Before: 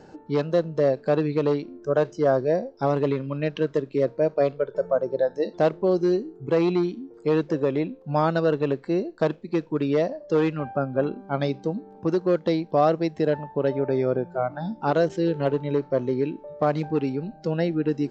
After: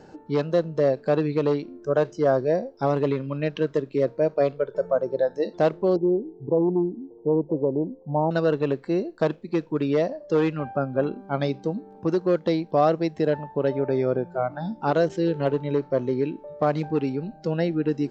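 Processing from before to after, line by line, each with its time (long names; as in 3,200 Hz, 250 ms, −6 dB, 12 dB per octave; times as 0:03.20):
0:05.96–0:08.31: elliptic low-pass filter 940 Hz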